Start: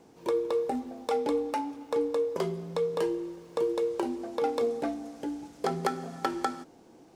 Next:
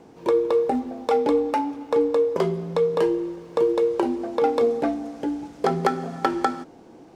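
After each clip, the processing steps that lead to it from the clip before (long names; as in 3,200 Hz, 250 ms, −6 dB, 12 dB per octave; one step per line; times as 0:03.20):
high-shelf EQ 4,700 Hz −10 dB
level +8 dB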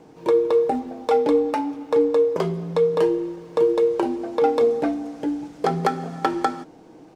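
comb filter 6.5 ms, depth 31%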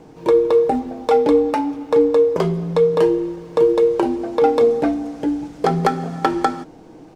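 low-shelf EQ 91 Hz +10.5 dB
level +3.5 dB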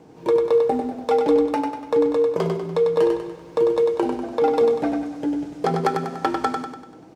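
high-pass filter 64 Hz
on a send: repeating echo 97 ms, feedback 48%, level −5 dB
on the sum: level −4.5 dB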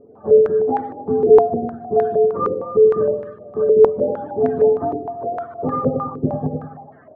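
frequency axis turned over on the octave scale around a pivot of 450 Hz
low-pass on a step sequencer 6.5 Hz 420–1,700 Hz
level −1 dB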